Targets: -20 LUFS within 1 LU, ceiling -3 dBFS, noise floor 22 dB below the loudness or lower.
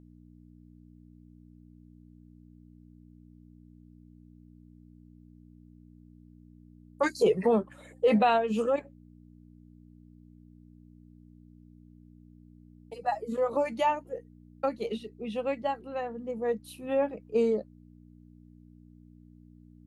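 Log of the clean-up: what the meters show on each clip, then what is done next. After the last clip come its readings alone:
hum 60 Hz; harmonics up to 300 Hz; hum level -51 dBFS; loudness -29.5 LUFS; peak -14.0 dBFS; loudness target -20.0 LUFS
-> de-hum 60 Hz, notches 5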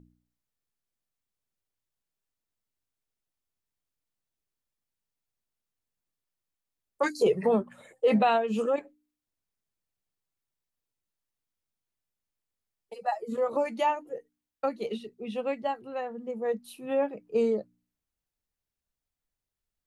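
hum none; loudness -29.5 LUFS; peak -14.0 dBFS; loudness target -20.0 LUFS
-> gain +9.5 dB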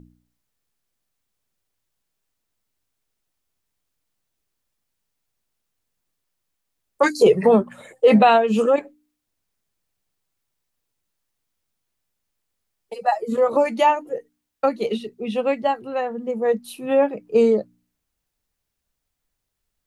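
loudness -19.5 LUFS; peak -4.5 dBFS; noise floor -79 dBFS

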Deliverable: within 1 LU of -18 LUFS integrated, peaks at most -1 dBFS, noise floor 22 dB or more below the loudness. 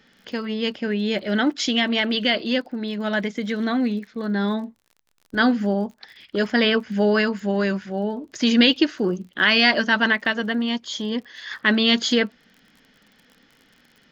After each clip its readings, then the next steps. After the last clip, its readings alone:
ticks 40/s; loudness -21.5 LUFS; peak -3.5 dBFS; loudness target -18.0 LUFS
-> de-click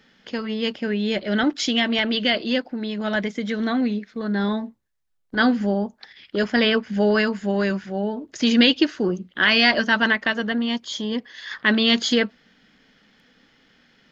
ticks 0.071/s; loudness -21.5 LUFS; peak -3.5 dBFS; loudness target -18.0 LUFS
-> gain +3.5 dB; limiter -1 dBFS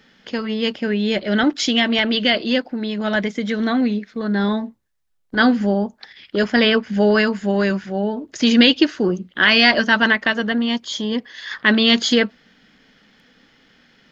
loudness -18.0 LUFS; peak -1.0 dBFS; noise floor -57 dBFS

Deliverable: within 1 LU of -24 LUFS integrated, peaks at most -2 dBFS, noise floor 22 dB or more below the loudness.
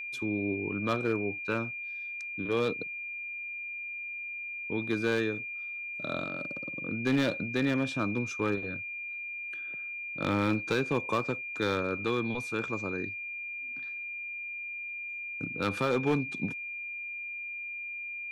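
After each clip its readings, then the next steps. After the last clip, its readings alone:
clipped 0.4%; flat tops at -20.5 dBFS; steady tone 2400 Hz; tone level -36 dBFS; loudness -32.5 LUFS; peak -20.5 dBFS; loudness target -24.0 LUFS
-> clip repair -20.5 dBFS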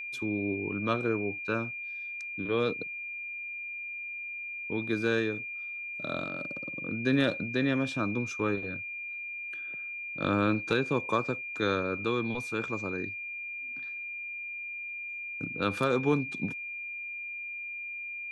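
clipped 0.0%; steady tone 2400 Hz; tone level -36 dBFS
-> notch 2400 Hz, Q 30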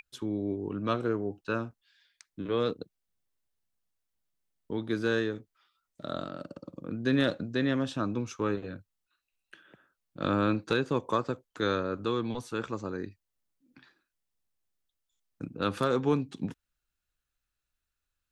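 steady tone none; loudness -31.5 LUFS; peak -13.0 dBFS; loudness target -24.0 LUFS
-> gain +7.5 dB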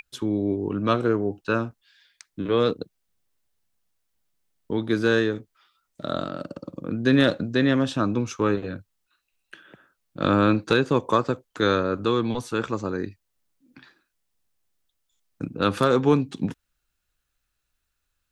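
loudness -24.0 LUFS; peak -5.5 dBFS; noise floor -78 dBFS

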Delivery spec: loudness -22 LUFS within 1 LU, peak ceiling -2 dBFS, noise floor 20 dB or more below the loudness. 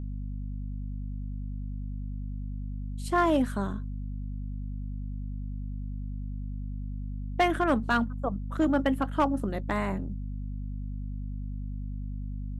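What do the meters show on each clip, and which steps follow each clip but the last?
clipped 0.2%; flat tops at -17.0 dBFS; hum 50 Hz; harmonics up to 250 Hz; hum level -32 dBFS; loudness -32.0 LUFS; peak -17.0 dBFS; loudness target -22.0 LUFS
-> clip repair -17 dBFS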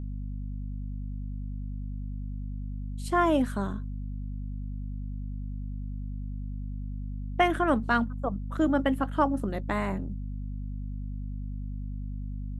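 clipped 0.0%; hum 50 Hz; harmonics up to 250 Hz; hum level -32 dBFS
-> de-hum 50 Hz, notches 5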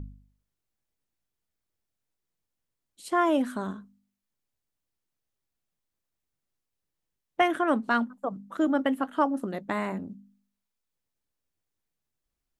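hum none; loudness -28.0 LUFS; peak -11.0 dBFS; loudness target -22.0 LUFS
-> gain +6 dB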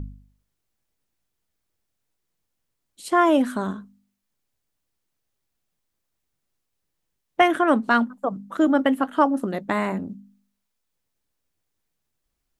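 loudness -22.0 LUFS; peak -5.0 dBFS; noise floor -79 dBFS

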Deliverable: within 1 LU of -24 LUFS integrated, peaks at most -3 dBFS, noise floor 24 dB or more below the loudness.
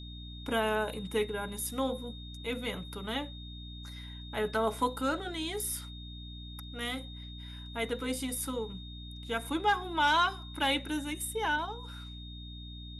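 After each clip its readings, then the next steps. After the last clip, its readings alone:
hum 60 Hz; harmonics up to 300 Hz; hum level -43 dBFS; steady tone 3700 Hz; tone level -48 dBFS; loudness -33.0 LUFS; peak -16.0 dBFS; loudness target -24.0 LUFS
-> notches 60/120/180/240/300 Hz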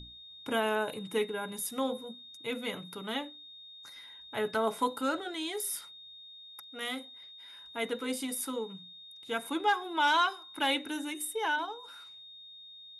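hum none; steady tone 3700 Hz; tone level -48 dBFS
-> notch 3700 Hz, Q 30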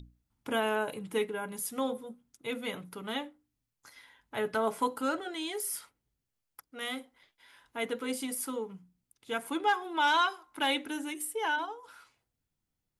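steady tone none; loudness -33.0 LUFS; peak -16.5 dBFS; loudness target -24.0 LUFS
-> gain +9 dB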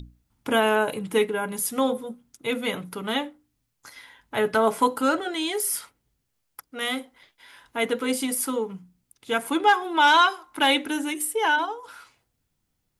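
loudness -24.0 LUFS; peak -7.5 dBFS; noise floor -76 dBFS

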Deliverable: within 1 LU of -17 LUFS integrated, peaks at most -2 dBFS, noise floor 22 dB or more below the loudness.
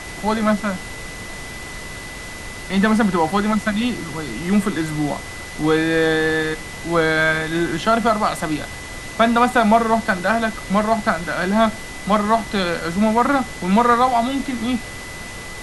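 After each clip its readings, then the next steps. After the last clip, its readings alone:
steady tone 2000 Hz; tone level -35 dBFS; noise floor -33 dBFS; noise floor target -41 dBFS; loudness -19.0 LUFS; peak -1.5 dBFS; loudness target -17.0 LUFS
-> notch 2000 Hz, Q 30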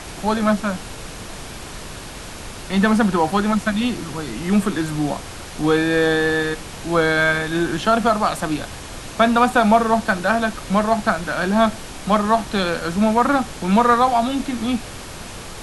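steady tone none; noise floor -35 dBFS; noise floor target -41 dBFS
-> noise print and reduce 6 dB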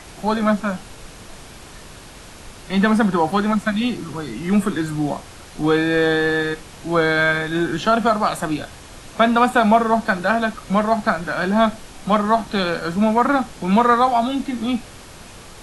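noise floor -40 dBFS; noise floor target -41 dBFS
-> noise print and reduce 6 dB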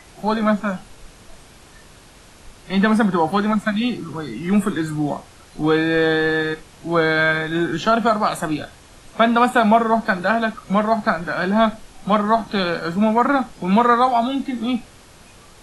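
noise floor -46 dBFS; loudness -19.0 LUFS; peak -1.5 dBFS; loudness target -17.0 LUFS
-> gain +2 dB; limiter -2 dBFS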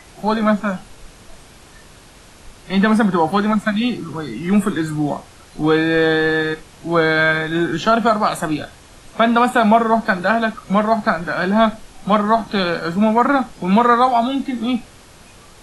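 loudness -17.5 LUFS; peak -2.0 dBFS; noise floor -44 dBFS

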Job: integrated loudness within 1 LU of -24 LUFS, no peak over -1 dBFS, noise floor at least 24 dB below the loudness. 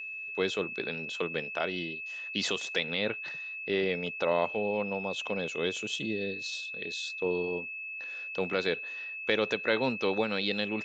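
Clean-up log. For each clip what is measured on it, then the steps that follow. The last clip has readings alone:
steady tone 2600 Hz; tone level -37 dBFS; loudness -31.5 LUFS; peak -10.0 dBFS; loudness target -24.0 LUFS
-> notch 2600 Hz, Q 30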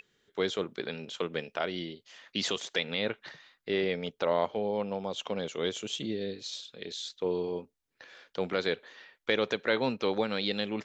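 steady tone none; loudness -33.0 LUFS; peak -10.5 dBFS; loudness target -24.0 LUFS
-> gain +9 dB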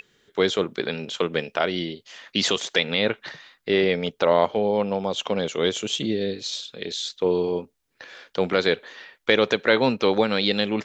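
loudness -24.0 LUFS; peak -1.5 dBFS; noise floor -69 dBFS

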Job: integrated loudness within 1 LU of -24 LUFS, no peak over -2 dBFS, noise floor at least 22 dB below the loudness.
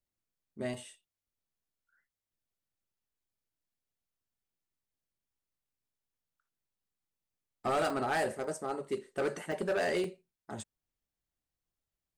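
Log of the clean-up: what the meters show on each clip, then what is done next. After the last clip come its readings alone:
clipped 0.7%; flat tops at -26.0 dBFS; dropouts 5; longest dropout 2.2 ms; loudness -34.5 LUFS; peak -26.0 dBFS; loudness target -24.0 LUFS
-> clip repair -26 dBFS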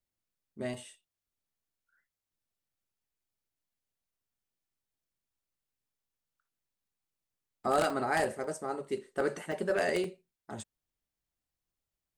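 clipped 0.0%; dropouts 5; longest dropout 2.2 ms
-> interpolate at 0.74/7.9/8.44/9.52/10.04, 2.2 ms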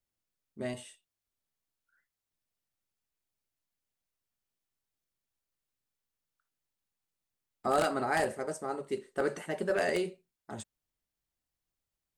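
dropouts 0; loudness -33.0 LUFS; peak -17.0 dBFS; loudness target -24.0 LUFS
-> gain +9 dB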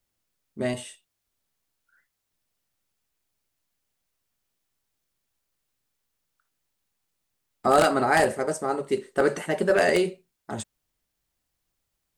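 loudness -24.0 LUFS; peak -8.0 dBFS; noise floor -80 dBFS

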